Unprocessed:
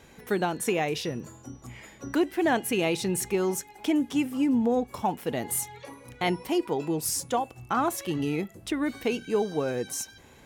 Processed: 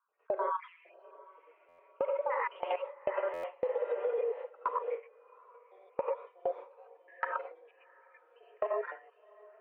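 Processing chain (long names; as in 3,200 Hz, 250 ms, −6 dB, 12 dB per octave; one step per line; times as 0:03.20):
time-frequency cells dropped at random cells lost 74%
reverb whose tail is shaped and stops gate 160 ms rising, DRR −4.5 dB
wrong playback speed 44.1 kHz file played as 48 kHz
output level in coarse steps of 13 dB
single-sideband voice off tune +180 Hz 210–2,200 Hz
feedback delay with all-pass diffusion 746 ms, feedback 42%, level −8 dB
noise gate with hold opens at −24 dBFS
downward compressor 6 to 1, threshold −32 dBFS, peak gain reduction 9 dB
buffer that repeats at 0:01.68/0:03.33, samples 512, times 8
level +2.5 dB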